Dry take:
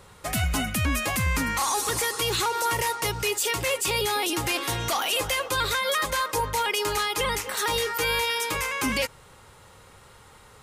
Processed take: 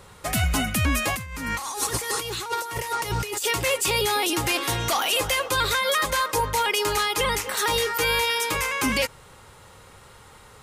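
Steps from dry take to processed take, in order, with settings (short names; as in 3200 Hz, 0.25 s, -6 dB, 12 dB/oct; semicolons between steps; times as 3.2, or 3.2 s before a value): 1.13–3.45 negative-ratio compressor -30 dBFS, ratio -0.5; gain +2.5 dB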